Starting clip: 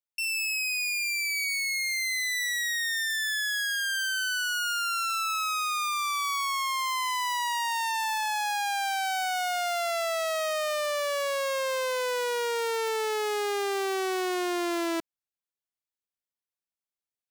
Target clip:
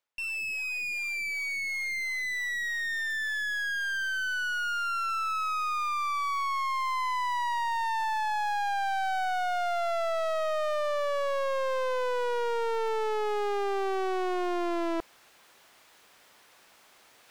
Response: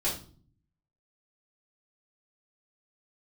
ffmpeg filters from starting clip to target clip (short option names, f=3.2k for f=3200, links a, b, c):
-filter_complex "[0:a]asplit=2[a][b];[b]highpass=f=720:p=1,volume=17dB,asoftclip=type=tanh:threshold=-24dB[c];[a][c]amix=inputs=2:normalize=0,lowpass=f=1.5k:p=1,volume=-6dB,areverse,acompressor=mode=upward:threshold=-32dB:ratio=2.5,areverse"